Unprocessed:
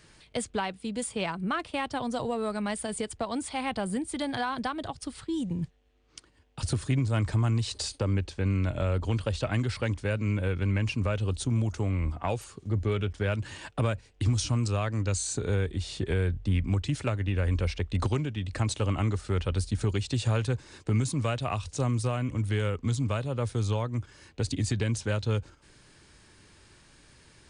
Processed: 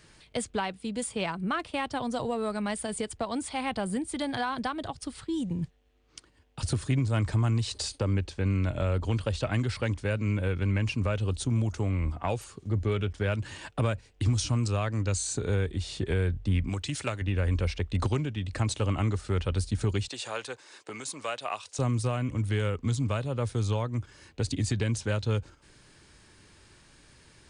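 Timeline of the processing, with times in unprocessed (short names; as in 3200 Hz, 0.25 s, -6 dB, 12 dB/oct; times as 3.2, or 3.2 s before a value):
16.69–17.22 tilt +2 dB/oct
20.08–21.79 HPF 550 Hz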